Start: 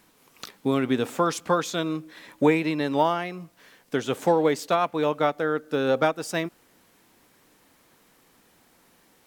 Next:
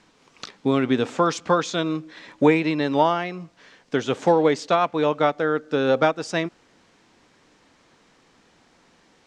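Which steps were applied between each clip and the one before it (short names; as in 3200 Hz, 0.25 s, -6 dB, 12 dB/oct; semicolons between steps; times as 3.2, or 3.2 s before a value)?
LPF 6800 Hz 24 dB/oct; gain +3 dB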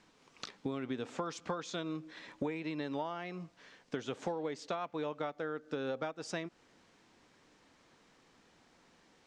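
compressor 6:1, threshold -27 dBFS, peak gain reduction 15 dB; gain -7.5 dB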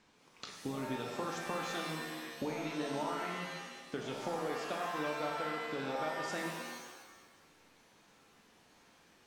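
shimmer reverb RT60 1.2 s, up +7 st, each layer -2 dB, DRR 0.5 dB; gain -3 dB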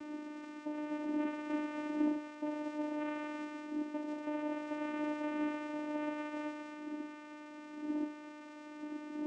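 delta modulation 16 kbps, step -41 dBFS; wind noise 150 Hz -38 dBFS; vocoder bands 4, saw 300 Hz; gain -1 dB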